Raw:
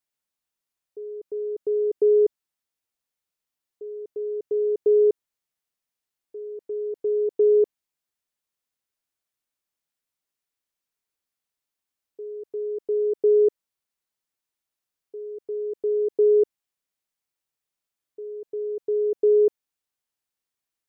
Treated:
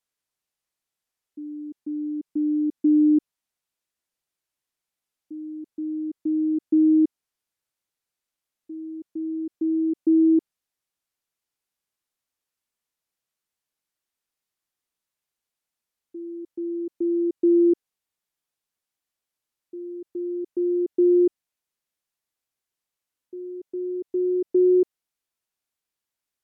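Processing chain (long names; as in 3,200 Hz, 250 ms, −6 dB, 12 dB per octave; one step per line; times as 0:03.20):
gliding playback speed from 70% → 88%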